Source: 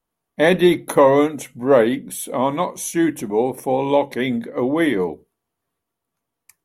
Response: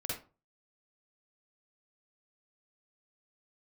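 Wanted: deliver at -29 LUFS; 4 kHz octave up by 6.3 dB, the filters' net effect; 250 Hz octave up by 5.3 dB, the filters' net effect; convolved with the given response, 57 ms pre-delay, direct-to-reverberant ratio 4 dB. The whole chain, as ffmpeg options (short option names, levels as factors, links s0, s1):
-filter_complex "[0:a]equalizer=f=250:t=o:g=7,equalizer=f=4000:t=o:g=7.5,asplit=2[s0][s1];[1:a]atrim=start_sample=2205,adelay=57[s2];[s1][s2]afir=irnorm=-1:irlink=0,volume=0.501[s3];[s0][s3]amix=inputs=2:normalize=0,volume=0.168"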